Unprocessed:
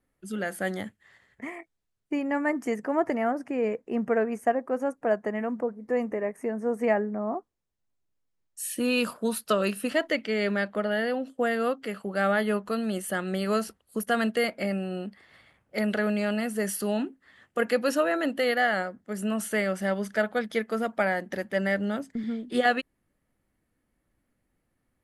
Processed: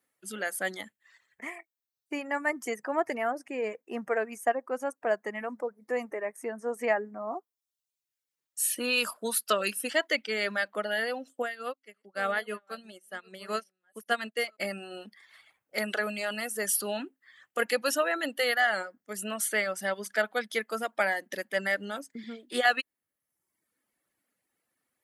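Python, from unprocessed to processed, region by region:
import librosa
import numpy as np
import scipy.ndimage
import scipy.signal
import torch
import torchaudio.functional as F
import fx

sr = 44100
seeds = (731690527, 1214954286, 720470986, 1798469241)

y = fx.chain(x, sr, fx.reverse_delay(ms=525, wet_db=-12),
    fx.high_shelf(hz=8000.0, db=-7.0),
    fx.upward_expand(threshold_db=-37.0, expansion=2.5), at=(11.42, 14.6))
y = fx.dereverb_blind(y, sr, rt60_s=0.85)
y = fx.highpass(y, sr, hz=330.0, slope=6)
y = fx.tilt_eq(y, sr, slope=2.0)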